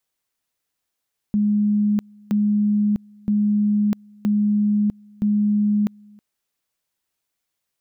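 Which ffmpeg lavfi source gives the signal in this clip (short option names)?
-f lavfi -i "aevalsrc='pow(10,(-15.5-28.5*gte(mod(t,0.97),0.65))/20)*sin(2*PI*208*t)':d=4.85:s=44100"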